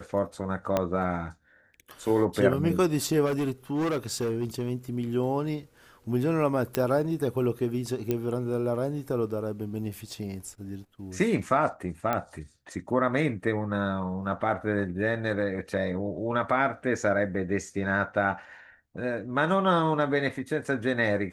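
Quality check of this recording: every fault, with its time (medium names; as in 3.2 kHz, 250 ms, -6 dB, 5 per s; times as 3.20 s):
0.77 s: pop -11 dBFS
3.25–4.70 s: clipped -24 dBFS
6.75 s: pop -10 dBFS
8.11 s: pop -14 dBFS
12.13 s: pop -14 dBFS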